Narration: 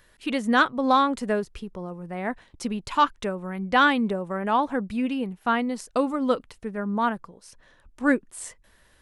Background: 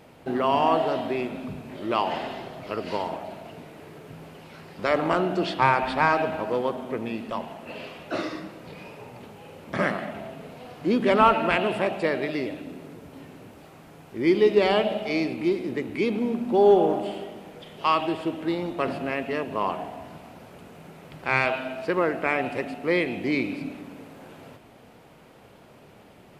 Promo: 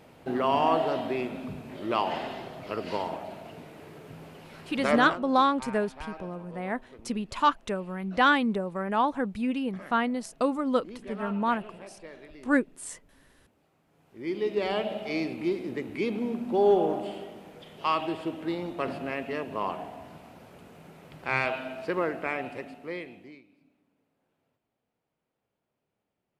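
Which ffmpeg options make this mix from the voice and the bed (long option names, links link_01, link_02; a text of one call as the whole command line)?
ffmpeg -i stem1.wav -i stem2.wav -filter_complex "[0:a]adelay=4450,volume=-2.5dB[link_01];[1:a]volume=14dB,afade=type=out:start_time=4.98:duration=0.22:silence=0.11885,afade=type=in:start_time=13.86:duration=1.31:silence=0.149624,afade=type=out:start_time=21.98:duration=1.44:silence=0.0421697[link_02];[link_01][link_02]amix=inputs=2:normalize=0" out.wav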